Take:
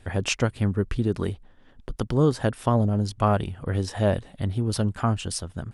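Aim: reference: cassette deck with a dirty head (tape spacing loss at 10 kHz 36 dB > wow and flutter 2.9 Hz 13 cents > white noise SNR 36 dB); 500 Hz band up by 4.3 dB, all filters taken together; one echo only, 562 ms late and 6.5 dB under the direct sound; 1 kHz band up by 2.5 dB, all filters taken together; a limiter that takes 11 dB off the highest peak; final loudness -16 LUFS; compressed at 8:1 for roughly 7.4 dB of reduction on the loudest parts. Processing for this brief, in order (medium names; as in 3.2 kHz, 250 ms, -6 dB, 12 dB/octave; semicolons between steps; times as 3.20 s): peaking EQ 500 Hz +6 dB; peaking EQ 1 kHz +5.5 dB; compression 8:1, threshold -19 dBFS; peak limiter -18.5 dBFS; tape spacing loss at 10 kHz 36 dB; delay 562 ms -6.5 dB; wow and flutter 2.9 Hz 13 cents; white noise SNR 36 dB; trim +15 dB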